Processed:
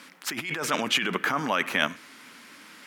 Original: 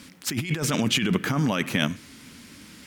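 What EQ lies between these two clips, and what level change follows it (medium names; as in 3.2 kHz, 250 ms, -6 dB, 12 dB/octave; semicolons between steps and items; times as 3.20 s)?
Bessel high-pass 300 Hz, order 2; peaking EQ 1.2 kHz +11.5 dB 2.7 oct; peaking EQ 12 kHz +3.5 dB 0.39 oct; -6.0 dB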